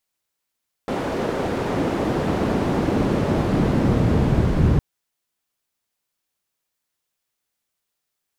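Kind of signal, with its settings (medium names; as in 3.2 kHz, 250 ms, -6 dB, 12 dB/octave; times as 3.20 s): swept filtered noise pink, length 3.91 s bandpass, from 440 Hz, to 100 Hz, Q 0.86, linear, gain ramp +9 dB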